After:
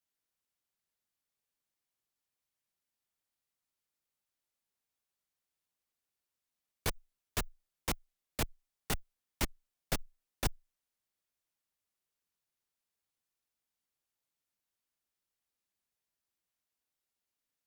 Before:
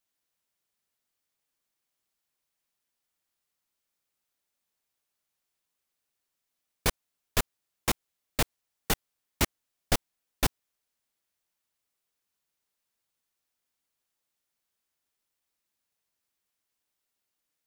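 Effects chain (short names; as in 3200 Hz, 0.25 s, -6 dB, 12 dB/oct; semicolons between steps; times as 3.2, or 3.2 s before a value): frequency shift -14 Hz; tube stage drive 21 dB, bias 0.55; low shelf 200 Hz +4 dB; gain -4 dB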